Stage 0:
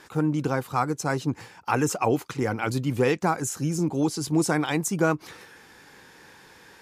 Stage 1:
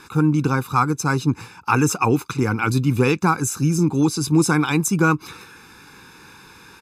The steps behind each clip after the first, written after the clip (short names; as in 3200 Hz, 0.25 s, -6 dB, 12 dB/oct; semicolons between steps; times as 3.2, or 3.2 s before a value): comb 0.8 ms, depth 77%; gain +4 dB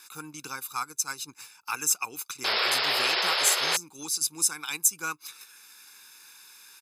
differentiator; painted sound noise, 2.44–3.77, 350–5400 Hz -28 dBFS; transient shaper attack 0 dB, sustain -6 dB; gain +2 dB